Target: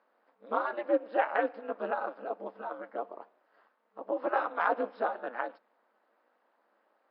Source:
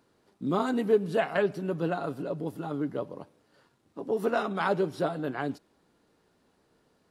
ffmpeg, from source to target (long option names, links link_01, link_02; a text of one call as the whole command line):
ffmpeg -i in.wav -filter_complex "[0:a]afftfilt=real='re*between(b*sr/4096,320,5300)':imag='im*between(b*sr/4096,320,5300)':win_size=4096:overlap=0.75,aeval=exprs='val(0)*sin(2*PI*120*n/s)':channel_layout=same,acrossover=split=560 2100:gain=0.2 1 0.0891[link_01][link_02][link_03];[link_01][link_02][link_03]amix=inputs=3:normalize=0,volume=5.5dB" out.wav